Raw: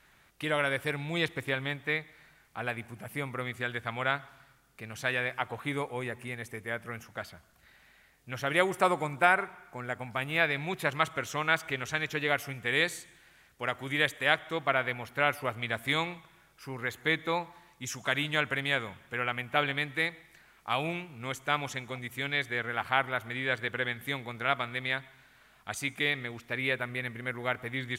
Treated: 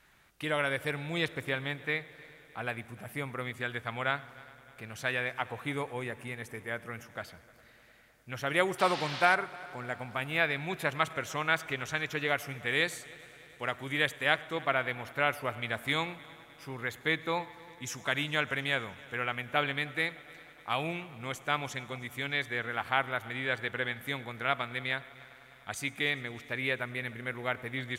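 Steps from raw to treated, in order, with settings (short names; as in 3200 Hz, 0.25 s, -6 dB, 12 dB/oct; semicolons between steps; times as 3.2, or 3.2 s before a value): 8.78–9.34 band noise 680–4600 Hz -38 dBFS; multi-head echo 0.101 s, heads first and third, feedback 74%, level -24 dB; gain -1.5 dB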